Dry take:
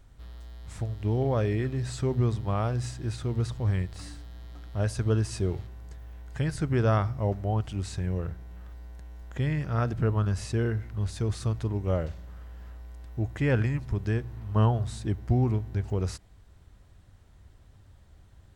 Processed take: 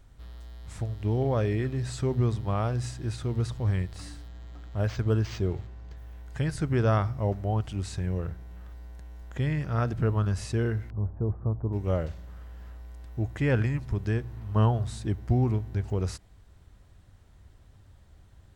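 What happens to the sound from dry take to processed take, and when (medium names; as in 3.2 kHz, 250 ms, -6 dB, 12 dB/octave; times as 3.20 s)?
4.28–5.97 s: decimation joined by straight lines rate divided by 4×
10.90–11.73 s: inverse Chebyshev low-pass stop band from 4.4 kHz, stop band 70 dB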